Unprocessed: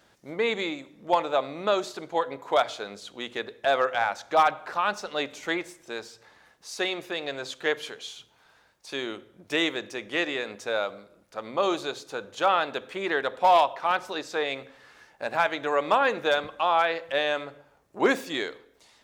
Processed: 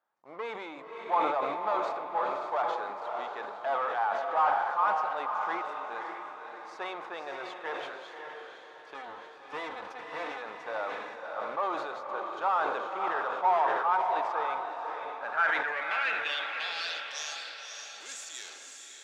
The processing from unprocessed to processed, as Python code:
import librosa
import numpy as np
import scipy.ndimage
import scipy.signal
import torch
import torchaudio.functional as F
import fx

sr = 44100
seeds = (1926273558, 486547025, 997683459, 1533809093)

y = fx.lower_of_two(x, sr, delay_ms=4.0, at=(8.94, 10.42))
y = scipy.signal.sosfilt(scipy.signal.butter(2, 10000.0, 'lowpass', fs=sr, output='sos'), y)
y = fx.low_shelf(y, sr, hz=130.0, db=5.0)
y = fx.notch(y, sr, hz=1000.0, q=6.4)
y = fx.leveller(y, sr, passes=3)
y = fx.filter_sweep_bandpass(y, sr, from_hz=1000.0, to_hz=7200.0, start_s=15.0, end_s=17.43, q=4.8)
y = fx.echo_diffused(y, sr, ms=564, feedback_pct=47, wet_db=-4)
y = fx.sustainer(y, sr, db_per_s=34.0)
y = y * 10.0 ** (-3.0 / 20.0)